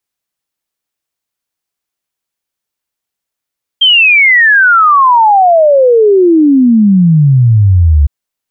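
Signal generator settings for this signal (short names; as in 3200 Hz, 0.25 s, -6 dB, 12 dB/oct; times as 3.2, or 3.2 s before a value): log sweep 3200 Hz -> 69 Hz 4.26 s -3 dBFS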